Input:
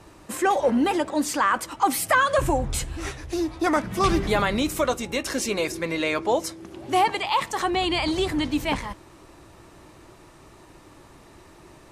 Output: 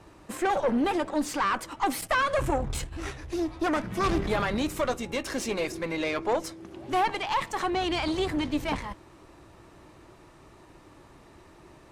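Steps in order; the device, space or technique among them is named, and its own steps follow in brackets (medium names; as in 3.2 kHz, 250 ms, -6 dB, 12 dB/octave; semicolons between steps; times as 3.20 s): 2.01–2.93 s: gate -30 dBFS, range -10 dB; tube preamp driven hard (valve stage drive 19 dB, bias 0.6; treble shelf 5 kHz -6.5 dB)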